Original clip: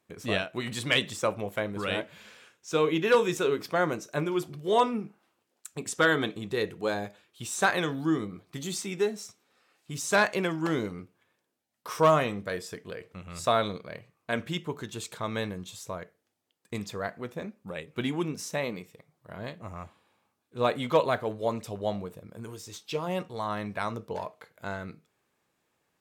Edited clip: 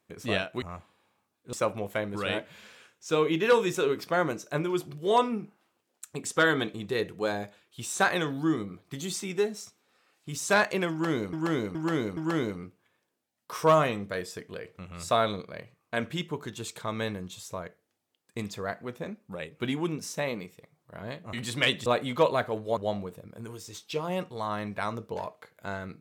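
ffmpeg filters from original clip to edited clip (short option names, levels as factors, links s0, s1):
-filter_complex "[0:a]asplit=9[s0][s1][s2][s3][s4][s5][s6][s7][s8];[s0]atrim=end=0.622[s9];[s1]atrim=start=19.688:end=20.602[s10];[s2]atrim=start=1.148:end=10.952[s11];[s3]atrim=start=10.528:end=10.952[s12];[s4]atrim=start=10.528:end=10.952[s13];[s5]atrim=start=10.528:end=19.692[s14];[s6]atrim=start=0.618:end=1.152[s15];[s7]atrim=start=20.598:end=21.512[s16];[s8]atrim=start=21.758[s17];[s9][s10]acrossfade=d=0.004:c1=hsin:c2=hsin[s18];[s18][s11]acrossfade=d=0.004:c1=hsin:c2=hsin[s19];[s19][s12]acrossfade=d=0.004:c1=hsin:c2=hsin[s20];[s20][s13]acrossfade=d=0.004:c1=hsin:c2=hsin[s21];[s21][s14]acrossfade=d=0.004:c1=hsin:c2=hsin[s22];[s22][s15]acrossfade=d=0.004:c1=hsin:c2=hsin[s23];[s23][s16]acrossfade=d=0.004:c1=hsin:c2=hsin[s24];[s24][s17]acrossfade=d=0.004:c1=hsin:c2=hsin"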